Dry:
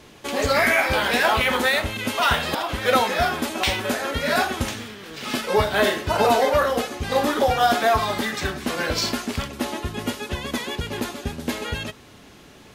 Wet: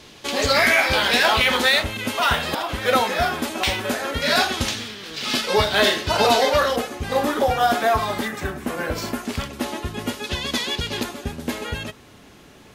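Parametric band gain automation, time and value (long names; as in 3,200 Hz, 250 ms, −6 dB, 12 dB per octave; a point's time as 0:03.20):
parametric band 4,300 Hz 1.5 octaves
+7.5 dB
from 0:01.83 +0.5 dB
from 0:04.22 +9 dB
from 0:06.76 −2.5 dB
from 0:08.28 −10.5 dB
from 0:09.25 0 dB
from 0:10.24 +9.5 dB
from 0:11.03 −1.5 dB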